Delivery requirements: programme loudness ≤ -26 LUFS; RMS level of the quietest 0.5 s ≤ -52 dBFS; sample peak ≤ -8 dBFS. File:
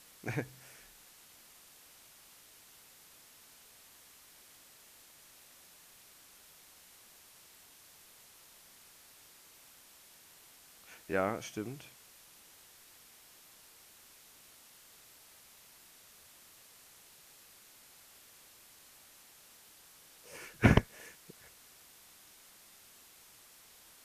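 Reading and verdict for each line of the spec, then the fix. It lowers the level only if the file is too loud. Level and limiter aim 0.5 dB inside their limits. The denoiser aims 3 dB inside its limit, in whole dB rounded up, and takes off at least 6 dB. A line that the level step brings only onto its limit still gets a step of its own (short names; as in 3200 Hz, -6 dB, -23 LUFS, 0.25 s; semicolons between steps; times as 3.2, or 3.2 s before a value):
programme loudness -34.5 LUFS: OK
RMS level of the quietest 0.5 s -59 dBFS: OK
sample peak -10.5 dBFS: OK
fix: none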